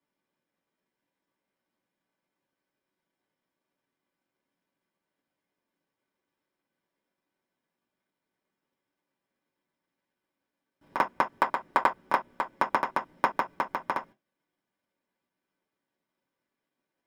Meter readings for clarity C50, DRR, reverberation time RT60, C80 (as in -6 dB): 18.0 dB, -3.0 dB, no single decay rate, 45.5 dB